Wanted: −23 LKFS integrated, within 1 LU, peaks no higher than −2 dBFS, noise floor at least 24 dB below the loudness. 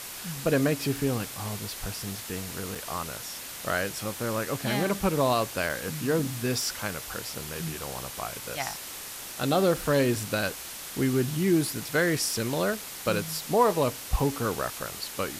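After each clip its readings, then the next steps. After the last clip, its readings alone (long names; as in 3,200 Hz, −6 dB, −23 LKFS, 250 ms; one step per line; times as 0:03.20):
number of dropouts 2; longest dropout 5.0 ms; background noise floor −40 dBFS; target noise floor −53 dBFS; integrated loudness −28.5 LKFS; sample peak −10.5 dBFS; target loudness −23.0 LKFS
→ repair the gap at 0:02.75/0:05.69, 5 ms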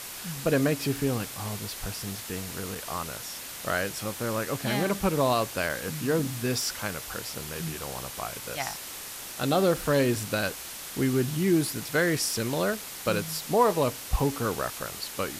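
number of dropouts 0; background noise floor −40 dBFS; target noise floor −53 dBFS
→ broadband denoise 13 dB, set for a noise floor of −40 dBFS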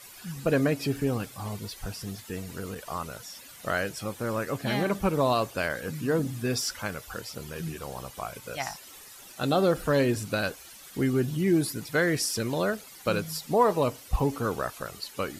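background noise floor −48 dBFS; target noise floor −53 dBFS
→ broadband denoise 6 dB, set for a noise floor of −48 dBFS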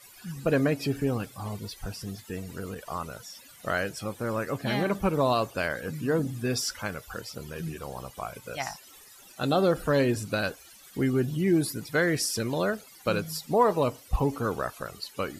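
background noise floor −52 dBFS; target noise floor −53 dBFS
→ broadband denoise 6 dB, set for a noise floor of −52 dBFS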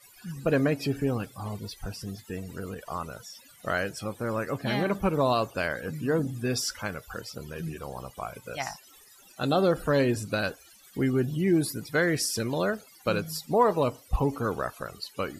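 background noise floor −55 dBFS; integrated loudness −29.0 LKFS; sample peak −11.0 dBFS; target loudness −23.0 LKFS
→ level +6 dB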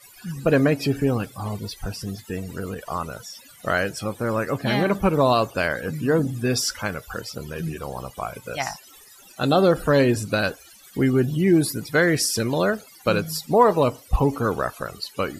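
integrated loudness −23.0 LKFS; sample peak −5.0 dBFS; background noise floor −49 dBFS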